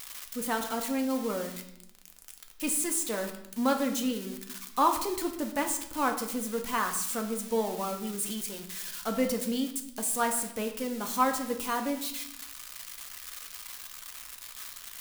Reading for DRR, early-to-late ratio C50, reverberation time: 3.5 dB, 9.0 dB, 0.75 s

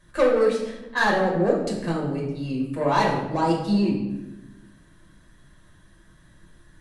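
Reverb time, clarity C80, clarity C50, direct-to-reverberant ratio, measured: 1.0 s, 7.0 dB, 4.0 dB, -3.5 dB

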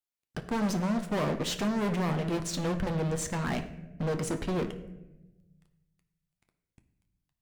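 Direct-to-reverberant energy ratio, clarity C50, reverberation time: 6.0 dB, 11.5 dB, 1.0 s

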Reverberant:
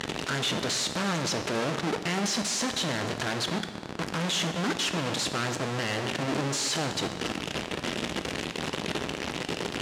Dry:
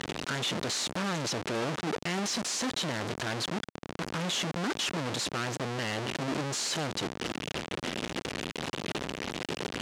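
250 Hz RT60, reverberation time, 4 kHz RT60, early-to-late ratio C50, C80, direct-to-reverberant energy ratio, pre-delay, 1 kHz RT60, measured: 1.6 s, 1.7 s, 1.5 s, 9.5 dB, 10.5 dB, 7.0 dB, 3 ms, 1.8 s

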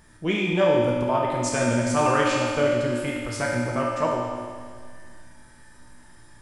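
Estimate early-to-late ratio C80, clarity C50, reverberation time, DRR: 1.5 dB, -0.5 dB, 1.9 s, -4.5 dB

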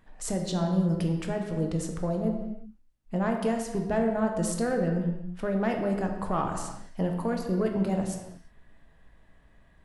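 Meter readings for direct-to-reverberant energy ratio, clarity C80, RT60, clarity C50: 2.5 dB, 7.0 dB, not exponential, 5.5 dB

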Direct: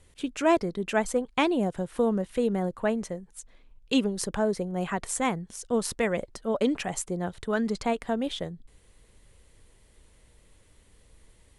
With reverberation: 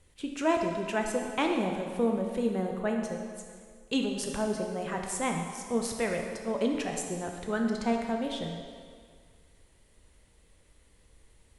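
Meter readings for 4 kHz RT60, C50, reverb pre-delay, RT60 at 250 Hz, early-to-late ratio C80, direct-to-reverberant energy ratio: 1.7 s, 3.5 dB, 12 ms, 1.8 s, 5.0 dB, 2.0 dB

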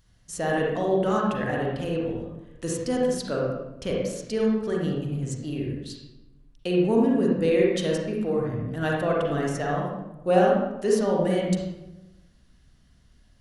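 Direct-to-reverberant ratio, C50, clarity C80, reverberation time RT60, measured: -3.0 dB, -1.5 dB, 3.0 dB, 1.0 s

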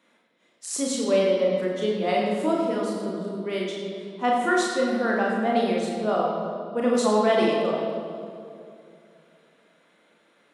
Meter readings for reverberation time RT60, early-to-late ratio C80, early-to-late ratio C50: 2.6 s, 2.0 dB, 0.5 dB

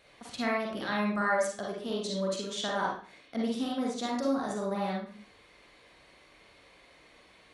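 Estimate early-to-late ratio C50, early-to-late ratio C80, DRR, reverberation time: 0.5 dB, 6.5 dB, -3.5 dB, 0.40 s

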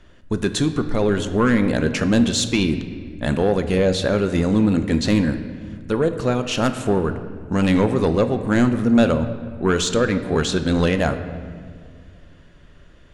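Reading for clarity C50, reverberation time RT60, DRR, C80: 10.5 dB, 2.0 s, 8.0 dB, 11.5 dB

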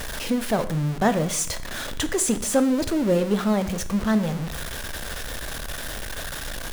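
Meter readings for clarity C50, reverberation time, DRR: 14.5 dB, 0.65 s, 10.5 dB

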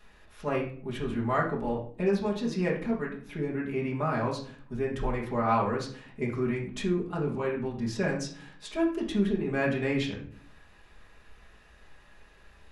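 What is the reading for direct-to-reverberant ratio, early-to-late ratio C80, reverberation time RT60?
-4.5 dB, 12.0 dB, 0.50 s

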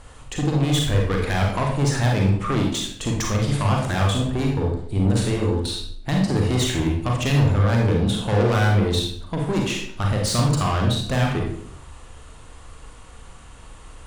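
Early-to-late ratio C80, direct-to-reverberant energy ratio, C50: 7.0 dB, -0.5 dB, 2.5 dB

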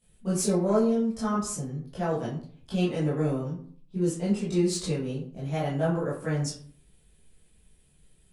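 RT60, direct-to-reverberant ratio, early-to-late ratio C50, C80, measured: 0.50 s, -11.5 dB, 4.5 dB, 9.0 dB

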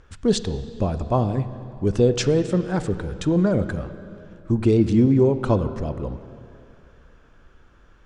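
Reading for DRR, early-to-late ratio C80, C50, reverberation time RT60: 11.0 dB, 13.0 dB, 12.0 dB, 2.7 s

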